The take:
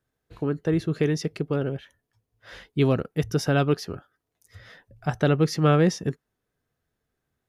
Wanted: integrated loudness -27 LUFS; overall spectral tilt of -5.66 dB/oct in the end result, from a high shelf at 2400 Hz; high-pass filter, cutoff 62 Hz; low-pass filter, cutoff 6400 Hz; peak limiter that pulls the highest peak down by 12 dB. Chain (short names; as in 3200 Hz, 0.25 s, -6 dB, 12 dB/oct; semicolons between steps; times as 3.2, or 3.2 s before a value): HPF 62 Hz; LPF 6400 Hz; high shelf 2400 Hz +3.5 dB; gain +4 dB; limiter -15.5 dBFS